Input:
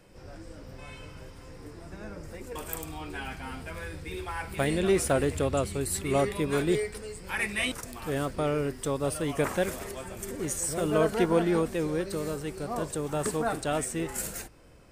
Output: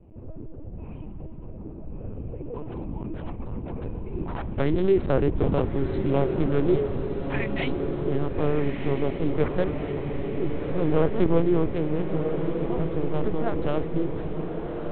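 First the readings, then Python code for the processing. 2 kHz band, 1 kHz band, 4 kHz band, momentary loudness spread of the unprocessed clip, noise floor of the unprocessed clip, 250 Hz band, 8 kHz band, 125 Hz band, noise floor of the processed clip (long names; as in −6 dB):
−4.0 dB, −1.0 dB, −6.0 dB, 20 LU, −47 dBFS, +5.0 dB, below −40 dB, +6.5 dB, −38 dBFS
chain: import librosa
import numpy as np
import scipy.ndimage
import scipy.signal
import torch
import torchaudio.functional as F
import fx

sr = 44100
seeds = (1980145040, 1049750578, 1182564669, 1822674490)

y = fx.wiener(x, sr, points=25)
y = fx.low_shelf(y, sr, hz=350.0, db=12.0)
y = fx.lpc_vocoder(y, sr, seeds[0], excitation='pitch_kept', order=8)
y = fx.echo_diffused(y, sr, ms=1300, feedback_pct=65, wet_db=-6.5)
y = y * 10.0 ** (-2.0 / 20.0)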